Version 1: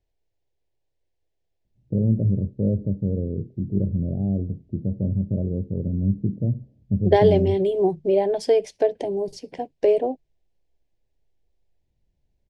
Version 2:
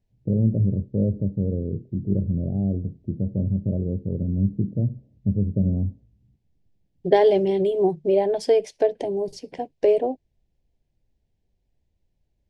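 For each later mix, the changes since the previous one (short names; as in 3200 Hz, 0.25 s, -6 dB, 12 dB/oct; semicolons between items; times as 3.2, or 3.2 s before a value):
first voice: entry -1.65 s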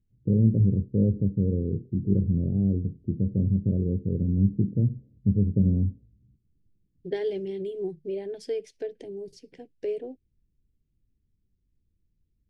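second voice -11.0 dB; master: add band shelf 820 Hz -13 dB 1.2 oct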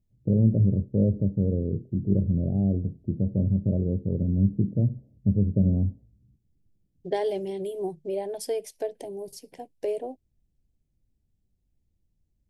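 second voice: remove air absorption 130 m; master: add band shelf 820 Hz +13 dB 1.2 oct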